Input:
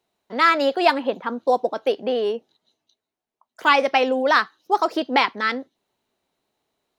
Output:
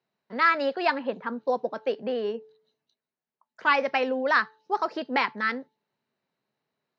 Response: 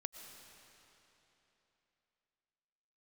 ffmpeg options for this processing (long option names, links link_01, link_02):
-af "highpass=120,equalizer=frequency=140:width_type=q:width=4:gain=10,equalizer=frequency=210:width_type=q:width=4:gain=4,equalizer=frequency=320:width_type=q:width=4:gain=-5,equalizer=frequency=730:width_type=q:width=4:gain=-4,equalizer=frequency=1700:width_type=q:width=4:gain=4,equalizer=frequency=3400:width_type=q:width=4:gain=-7,lowpass=frequency=5100:width=0.5412,lowpass=frequency=5100:width=1.3066,bandreject=frequency=436.2:width_type=h:width=4,bandreject=frequency=872.4:width_type=h:width=4,volume=-5.5dB"